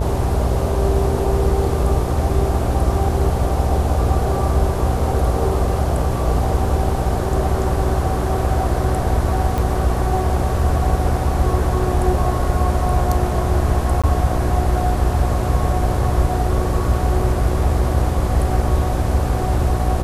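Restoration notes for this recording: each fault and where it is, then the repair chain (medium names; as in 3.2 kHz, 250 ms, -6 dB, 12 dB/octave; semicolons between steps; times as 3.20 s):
buzz 60 Hz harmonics 16 -22 dBFS
9.58 s: pop
14.02–14.04 s: dropout 16 ms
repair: de-click; de-hum 60 Hz, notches 16; interpolate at 14.02 s, 16 ms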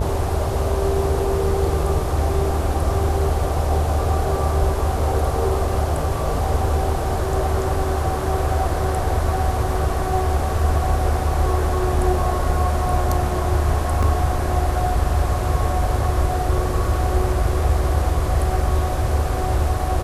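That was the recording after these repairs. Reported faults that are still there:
nothing left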